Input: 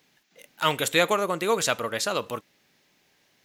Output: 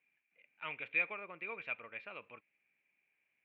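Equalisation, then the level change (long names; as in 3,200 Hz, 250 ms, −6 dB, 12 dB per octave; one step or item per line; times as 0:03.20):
resonant band-pass 2,400 Hz, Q 17
high-frequency loss of the air 480 metres
spectral tilt −4.5 dB per octave
+10.5 dB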